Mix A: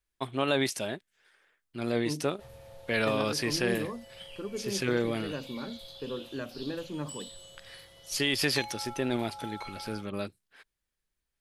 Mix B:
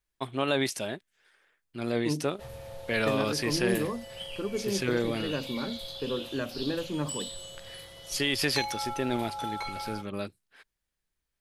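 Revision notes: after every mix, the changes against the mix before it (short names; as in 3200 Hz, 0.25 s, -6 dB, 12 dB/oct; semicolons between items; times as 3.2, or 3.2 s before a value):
second voice +4.5 dB; background +7.0 dB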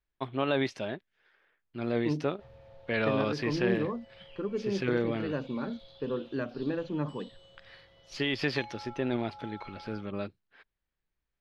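background -10.0 dB; master: add air absorption 230 m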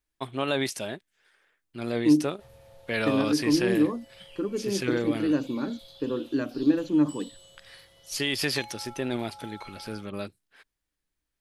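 second voice: add bell 300 Hz +14.5 dB 0.31 oct; master: remove air absorption 230 m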